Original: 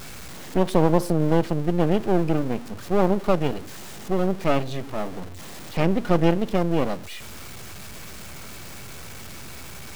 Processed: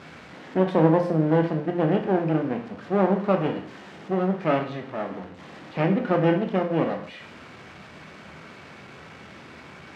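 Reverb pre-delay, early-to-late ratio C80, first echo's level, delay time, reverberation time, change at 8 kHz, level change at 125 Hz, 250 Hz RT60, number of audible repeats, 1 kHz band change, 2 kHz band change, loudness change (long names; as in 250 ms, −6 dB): 17 ms, 12.5 dB, no echo audible, no echo audible, 0.50 s, below −15 dB, −1.5 dB, 0.55 s, no echo audible, 0.0 dB, +0.5 dB, −0.5 dB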